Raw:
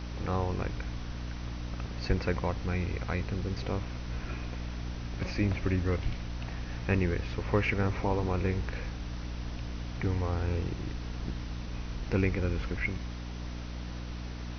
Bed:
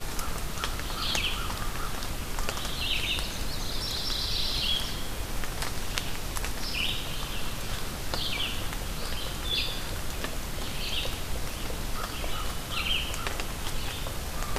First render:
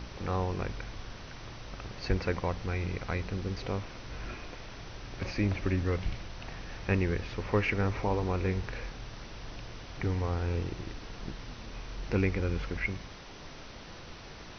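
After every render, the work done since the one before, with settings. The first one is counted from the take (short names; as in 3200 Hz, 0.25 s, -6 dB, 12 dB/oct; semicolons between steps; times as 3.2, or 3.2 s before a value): de-hum 60 Hz, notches 5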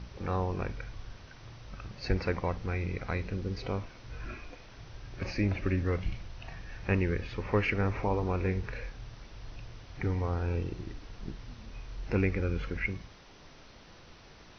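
noise print and reduce 7 dB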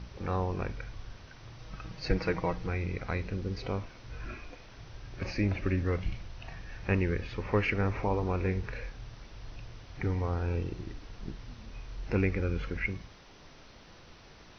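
1.58–2.69 comb 6.3 ms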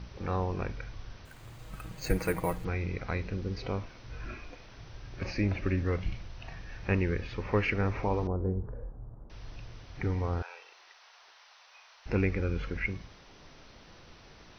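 1.25–2.65 careless resampling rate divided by 4×, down filtered, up hold; 8.27–9.3 Bessel low-pass 680 Hz, order 8; 10.42–12.06 inverse Chebyshev high-pass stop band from 280 Hz, stop band 50 dB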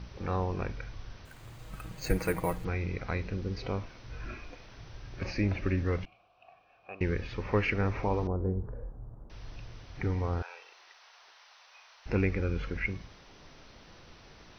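6.05–7.01 vowel filter a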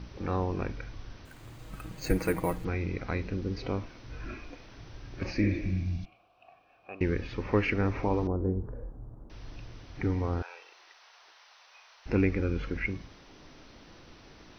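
5.44–6.03 spectral repair 250–3300 Hz both; bell 290 Hz +6.5 dB 0.65 oct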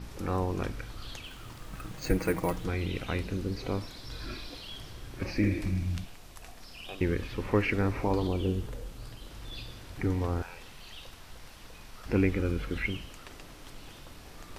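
add bed -16.5 dB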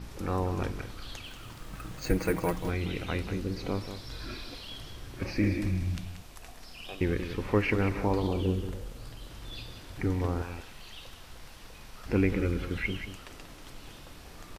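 echo 0.186 s -10 dB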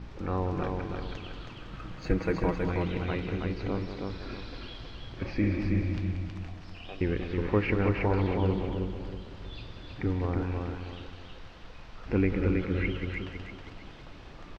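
air absorption 190 m; feedback echo 0.321 s, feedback 35%, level -4 dB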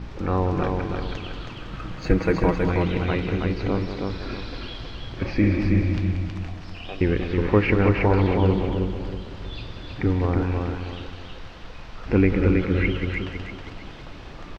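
gain +7.5 dB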